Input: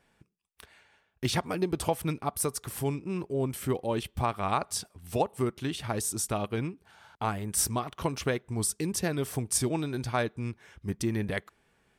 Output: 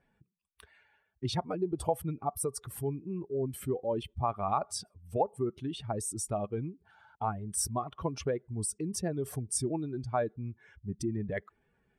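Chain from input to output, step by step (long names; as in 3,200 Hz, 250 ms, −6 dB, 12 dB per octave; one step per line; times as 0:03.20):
expanding power law on the bin magnitudes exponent 1.8
dynamic equaliser 700 Hz, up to +4 dB, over −43 dBFS, Q 0.85
level −4.5 dB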